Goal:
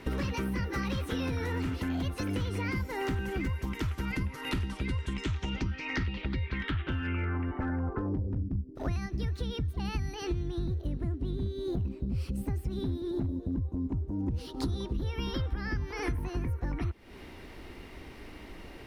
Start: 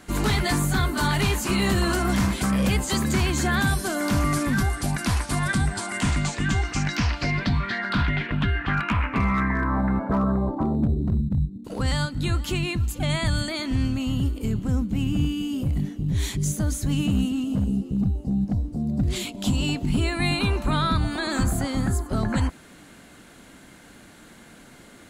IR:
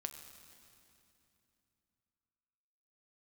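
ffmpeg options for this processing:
-af "bass=f=250:g=4,treble=f=4k:g=-13,asetrate=58653,aresample=44100,asubboost=boost=3.5:cutoff=77,acompressor=threshold=-29dB:ratio=10"

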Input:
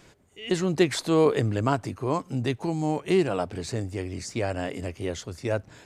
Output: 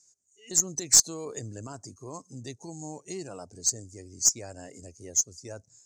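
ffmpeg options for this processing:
-af "afftdn=nr=18:nf=-36,alimiter=limit=-16dB:level=0:latency=1:release=17,lowpass=f=6.5k:t=q:w=4,aexciter=amount=14.3:drive=8.4:freq=5k,aeval=exprs='2.51*(cos(1*acos(clip(val(0)/2.51,-1,1)))-cos(1*PI/2))+0.316*(cos(2*acos(clip(val(0)/2.51,-1,1)))-cos(2*PI/2))+0.0794*(cos(7*acos(clip(val(0)/2.51,-1,1)))-cos(7*PI/2))+0.0141*(cos(8*acos(clip(val(0)/2.51,-1,1)))-cos(8*PI/2))':c=same,volume=-11.5dB"

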